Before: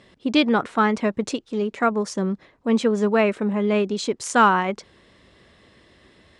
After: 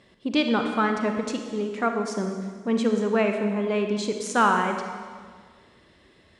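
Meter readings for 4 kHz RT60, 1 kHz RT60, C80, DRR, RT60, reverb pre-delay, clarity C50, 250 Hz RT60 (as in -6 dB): 1.6 s, 1.7 s, 6.5 dB, 4.5 dB, 1.8 s, 32 ms, 5.5 dB, 1.9 s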